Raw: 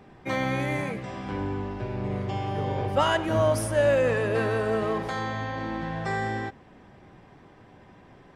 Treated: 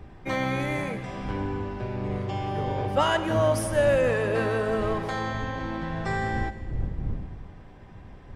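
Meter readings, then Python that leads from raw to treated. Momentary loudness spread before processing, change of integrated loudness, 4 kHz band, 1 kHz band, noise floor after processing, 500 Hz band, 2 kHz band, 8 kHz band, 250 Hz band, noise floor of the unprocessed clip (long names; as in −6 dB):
9 LU, 0.0 dB, 0.0 dB, 0.0 dB, −46 dBFS, 0.0 dB, 0.0 dB, 0.0 dB, +0.5 dB, −53 dBFS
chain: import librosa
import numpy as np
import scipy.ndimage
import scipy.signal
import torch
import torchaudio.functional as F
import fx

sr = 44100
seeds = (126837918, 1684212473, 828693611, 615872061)

y = fx.dmg_wind(x, sr, seeds[0], corner_hz=95.0, level_db=-37.0)
y = fx.echo_split(y, sr, split_hz=740.0, low_ms=248, high_ms=155, feedback_pct=52, wet_db=-15.5)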